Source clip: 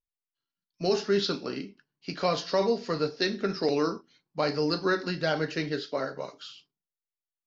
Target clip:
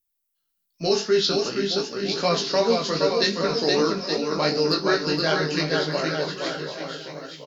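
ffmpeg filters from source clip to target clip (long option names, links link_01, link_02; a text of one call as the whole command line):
ffmpeg -i in.wav -af "aemphasis=mode=production:type=50fm,aecho=1:1:470|869.5|1209|1498|1743:0.631|0.398|0.251|0.158|0.1,flanger=delay=17.5:depth=3.2:speed=2.6,volume=6.5dB" out.wav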